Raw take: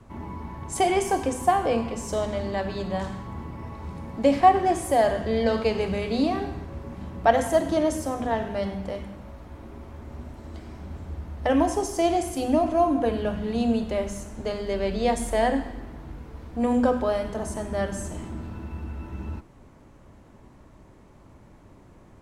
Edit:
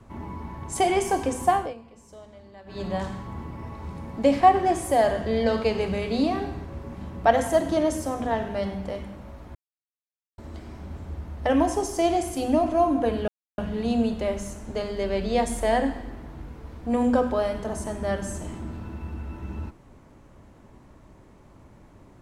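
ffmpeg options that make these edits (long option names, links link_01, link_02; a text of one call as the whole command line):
ffmpeg -i in.wav -filter_complex "[0:a]asplit=6[link_01][link_02][link_03][link_04][link_05][link_06];[link_01]atrim=end=1.74,asetpts=PTS-STARTPTS,afade=type=out:start_time=1.55:duration=0.19:silence=0.112202[link_07];[link_02]atrim=start=1.74:end=2.66,asetpts=PTS-STARTPTS,volume=-19dB[link_08];[link_03]atrim=start=2.66:end=9.55,asetpts=PTS-STARTPTS,afade=type=in:duration=0.19:silence=0.112202,afade=type=out:start_time=6.886:duration=0.004:curve=hsin[link_09];[link_04]atrim=start=9.55:end=10.38,asetpts=PTS-STARTPTS,volume=0[link_10];[link_05]atrim=start=10.38:end=13.28,asetpts=PTS-STARTPTS,afade=type=in:duration=0.004:curve=hsin,afade=type=out:start_time=2.896:duration=0.004:curve=hsin,apad=pad_dur=0.3[link_11];[link_06]atrim=start=13.28,asetpts=PTS-STARTPTS,afade=type=in:duration=0.004:curve=hsin[link_12];[link_07][link_08][link_09][link_10][link_11][link_12]concat=n=6:v=0:a=1" out.wav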